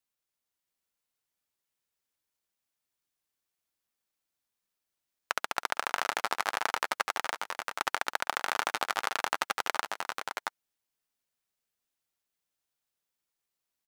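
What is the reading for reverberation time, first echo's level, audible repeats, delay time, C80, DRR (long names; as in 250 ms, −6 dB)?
no reverb audible, −17.5 dB, 3, 257 ms, no reverb audible, no reverb audible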